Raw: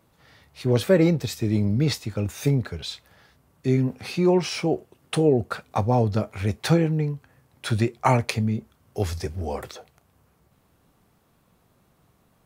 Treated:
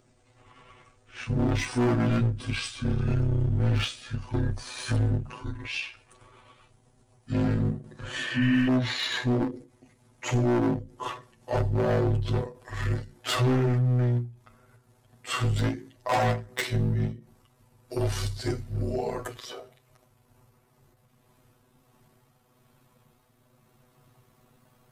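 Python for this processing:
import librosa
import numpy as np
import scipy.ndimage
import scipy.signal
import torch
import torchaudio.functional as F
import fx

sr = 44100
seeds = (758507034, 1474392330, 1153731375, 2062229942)

y = fx.pitch_glide(x, sr, semitones=-9.0, runs='ending unshifted')
y = np.clip(y, -10.0 ** (-23.0 / 20.0), 10.0 ** (-23.0 / 20.0))
y = fx.stretch_grains(y, sr, factor=2.0, grain_ms=32.0)
y = fx.spec_repair(y, sr, seeds[0], start_s=8.23, length_s=0.42, low_hz=330.0, high_hz=3100.0, source='before')
y = fx.end_taper(y, sr, db_per_s=150.0)
y = y * librosa.db_to_amplitude(3.0)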